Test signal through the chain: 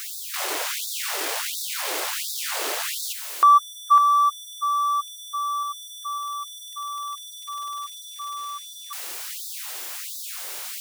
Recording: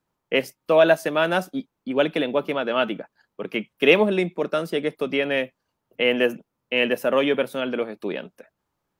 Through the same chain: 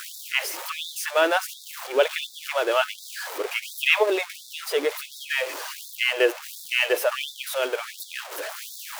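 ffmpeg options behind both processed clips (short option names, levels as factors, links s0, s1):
-af "aeval=exprs='val(0)+0.5*0.0473*sgn(val(0))':c=same,afftfilt=real='re*gte(b*sr/1024,290*pow(3500/290,0.5+0.5*sin(2*PI*1.4*pts/sr)))':imag='im*gte(b*sr/1024,290*pow(3500/290,0.5+0.5*sin(2*PI*1.4*pts/sr)))':win_size=1024:overlap=0.75"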